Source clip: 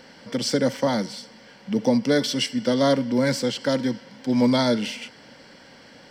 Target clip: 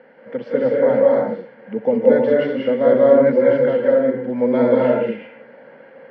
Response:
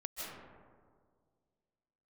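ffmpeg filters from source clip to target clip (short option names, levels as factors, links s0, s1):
-filter_complex "[0:a]highpass=f=150:w=0.5412,highpass=f=150:w=1.3066,equalizer=f=180:t=q:w=4:g=-8,equalizer=f=300:t=q:w=4:g=-7,equalizer=f=490:t=q:w=4:g=8,equalizer=f=1100:t=q:w=4:g=-6,lowpass=f=2000:w=0.5412,lowpass=f=2000:w=1.3066[s0];[1:a]atrim=start_sample=2205,afade=t=out:st=0.38:d=0.01,atrim=end_sample=17199,asetrate=37926,aresample=44100[s1];[s0][s1]afir=irnorm=-1:irlink=0,volume=1.5"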